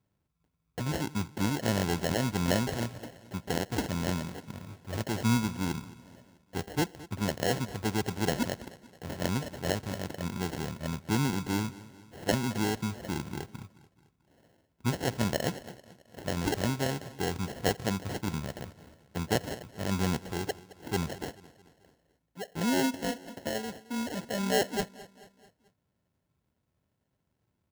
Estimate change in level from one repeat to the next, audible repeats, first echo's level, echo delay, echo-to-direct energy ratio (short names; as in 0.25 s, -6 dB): -6.0 dB, 3, -19.0 dB, 0.218 s, -17.5 dB